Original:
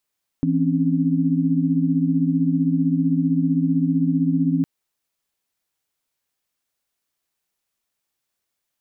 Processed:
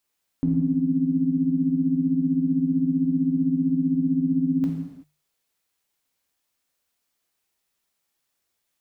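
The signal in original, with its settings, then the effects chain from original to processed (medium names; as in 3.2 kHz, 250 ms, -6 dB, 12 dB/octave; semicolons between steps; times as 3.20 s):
chord E3/C4/C#4 sine, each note -21 dBFS 4.21 s
hum notches 50/100/150 Hz; peak limiter -16.5 dBFS; gated-style reverb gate 410 ms falling, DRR 1 dB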